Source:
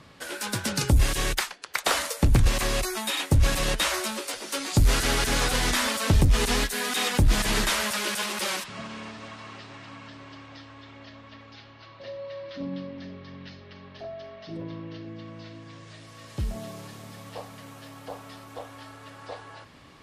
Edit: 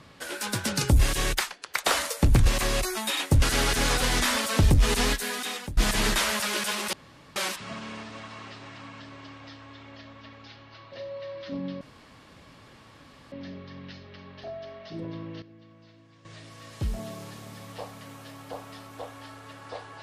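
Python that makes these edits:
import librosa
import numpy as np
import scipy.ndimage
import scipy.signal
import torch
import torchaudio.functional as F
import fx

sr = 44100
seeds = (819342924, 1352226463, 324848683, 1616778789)

y = fx.edit(x, sr, fx.cut(start_s=3.42, length_s=1.51),
    fx.fade_out_to(start_s=6.64, length_s=0.64, floor_db=-23.5),
    fx.insert_room_tone(at_s=8.44, length_s=0.43),
    fx.insert_room_tone(at_s=12.89, length_s=1.51),
    fx.clip_gain(start_s=14.99, length_s=0.83, db=-12.0), tone=tone)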